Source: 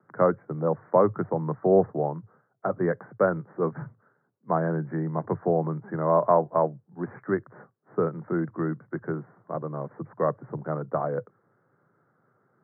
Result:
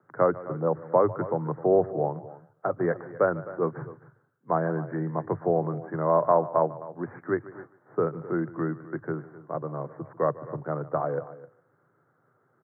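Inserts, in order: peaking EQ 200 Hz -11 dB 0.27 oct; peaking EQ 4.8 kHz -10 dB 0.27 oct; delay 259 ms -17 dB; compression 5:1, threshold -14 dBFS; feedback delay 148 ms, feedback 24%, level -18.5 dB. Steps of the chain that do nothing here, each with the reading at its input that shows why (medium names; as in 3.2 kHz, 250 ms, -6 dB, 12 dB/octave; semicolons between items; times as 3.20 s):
peaking EQ 4.8 kHz: input has nothing above 1.8 kHz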